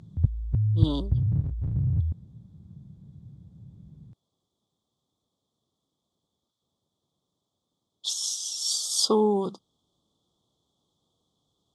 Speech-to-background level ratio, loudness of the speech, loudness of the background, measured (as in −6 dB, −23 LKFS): 0.5 dB, −26.5 LKFS, −27.0 LKFS